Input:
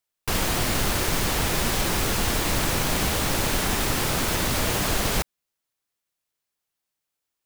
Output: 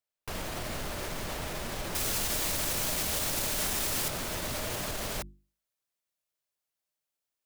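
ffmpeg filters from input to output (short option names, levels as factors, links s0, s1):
-af "equalizer=f=610:w=6.7:g=6.5,bandreject=f=50:t=h:w=6,bandreject=f=100:t=h:w=6,bandreject=f=150:t=h:w=6,bandreject=f=200:t=h:w=6,bandreject=f=250:t=h:w=6,bandreject=f=300:t=h:w=6,bandreject=f=350:t=h:w=6,alimiter=limit=0.112:level=0:latency=1:release=64,asetnsamples=n=441:p=0,asendcmd='1.95 highshelf g 10;4.08 highshelf g 2',highshelf=f=3600:g=-3.5,volume=0.473"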